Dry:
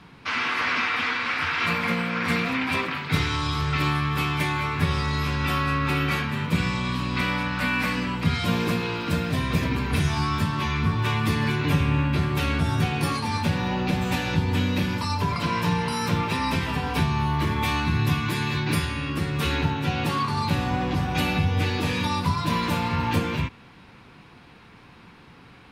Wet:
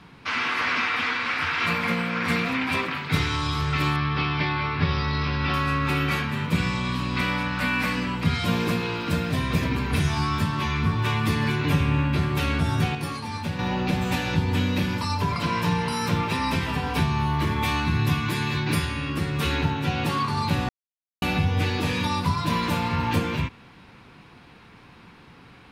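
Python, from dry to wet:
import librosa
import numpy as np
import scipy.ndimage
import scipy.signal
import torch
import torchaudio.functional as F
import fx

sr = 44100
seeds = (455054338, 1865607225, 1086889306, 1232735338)

y = fx.resample_bad(x, sr, factor=4, down='none', up='filtered', at=(3.96, 5.54))
y = fx.edit(y, sr, fx.clip_gain(start_s=12.95, length_s=0.64, db=-5.5),
    fx.silence(start_s=20.69, length_s=0.53), tone=tone)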